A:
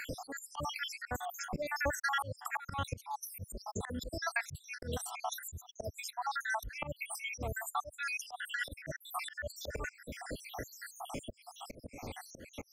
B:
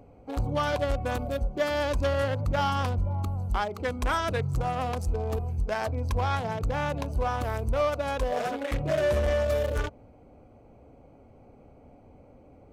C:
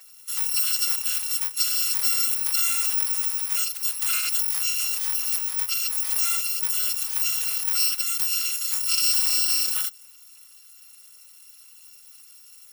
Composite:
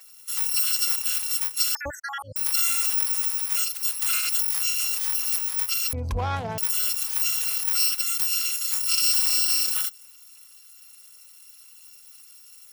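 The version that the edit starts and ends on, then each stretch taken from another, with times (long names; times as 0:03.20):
C
0:01.75–0:02.36: punch in from A
0:05.93–0:06.58: punch in from B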